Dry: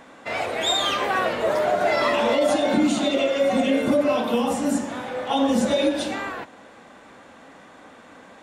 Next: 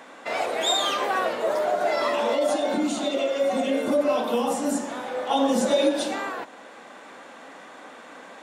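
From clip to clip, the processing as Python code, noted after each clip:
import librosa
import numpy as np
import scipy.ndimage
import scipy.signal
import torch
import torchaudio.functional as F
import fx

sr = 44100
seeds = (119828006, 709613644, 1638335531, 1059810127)

y = scipy.signal.sosfilt(scipy.signal.bessel(2, 330.0, 'highpass', norm='mag', fs=sr, output='sos'), x)
y = fx.dynamic_eq(y, sr, hz=2300.0, q=0.89, threshold_db=-40.0, ratio=4.0, max_db=-5)
y = fx.rider(y, sr, range_db=4, speed_s=2.0)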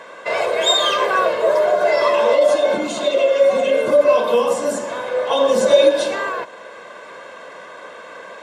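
y = fx.high_shelf(x, sr, hz=6800.0, db=-8.5)
y = y + 0.73 * np.pad(y, (int(1.9 * sr / 1000.0), 0))[:len(y)]
y = y * librosa.db_to_amplitude(5.5)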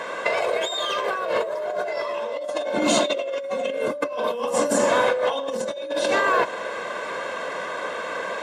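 y = fx.over_compress(x, sr, threshold_db=-25.0, ratio=-1.0)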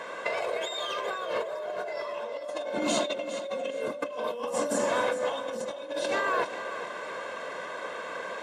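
y = fx.echo_feedback(x, sr, ms=410, feedback_pct=28, wet_db=-12.5)
y = y * librosa.db_to_amplitude(-7.5)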